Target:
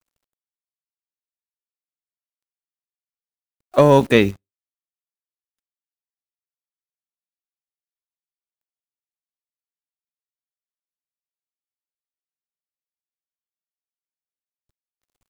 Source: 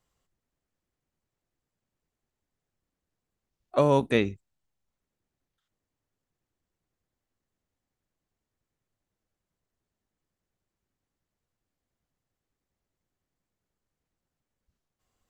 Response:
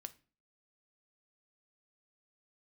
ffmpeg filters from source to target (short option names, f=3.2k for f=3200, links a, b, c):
-filter_complex "[0:a]acrusher=bits=9:dc=4:mix=0:aa=0.000001,asplit=2[a][b];[1:a]atrim=start_sample=2205,asetrate=79380,aresample=44100,lowshelf=f=450:g=-10.5[c];[b][c]afir=irnorm=-1:irlink=0,volume=-7dB[d];[a][d]amix=inputs=2:normalize=0,asettb=1/sr,asplit=3[e][f][g];[e]atrim=end=3.784[h];[f]atrim=start=3.78:end=4.31,asetpts=PTS-STARTPTS,afade=t=in:d=0.004:c=qsin,afade=t=out:st=0.526:d=0.004:c=qsin,acontrast=70[i];[g]atrim=start=4.306[j];[h][i]acrossfade=d=0.004:c1=hsin:c2=qsin[k];[k][j]acrossfade=d=0.004:c1=qsin:c2=hsin,volume=3dB"